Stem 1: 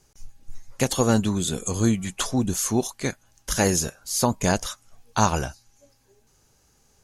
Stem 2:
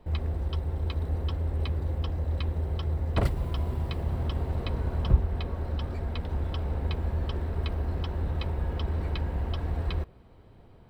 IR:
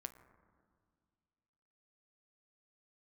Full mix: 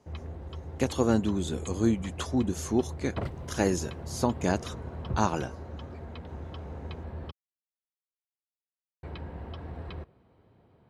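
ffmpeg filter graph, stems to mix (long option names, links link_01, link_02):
-filter_complex "[0:a]equalizer=frequency=320:width_type=o:width=0.77:gain=6,volume=-6dB[link_01];[1:a]volume=-5dB,asplit=3[link_02][link_03][link_04];[link_02]atrim=end=7.31,asetpts=PTS-STARTPTS,afade=type=out:start_time=7.306:duration=0.004:curve=hsin[link_05];[link_03]atrim=start=7.31:end=9.03,asetpts=PTS-STARTPTS,volume=0[link_06];[link_04]atrim=start=9.03,asetpts=PTS-STARTPTS,afade=type=in:duration=0.004:curve=hsin[link_07];[link_05][link_06][link_07]concat=n=3:v=0:a=1[link_08];[link_01][link_08]amix=inputs=2:normalize=0,highpass=97,aemphasis=mode=reproduction:type=50kf"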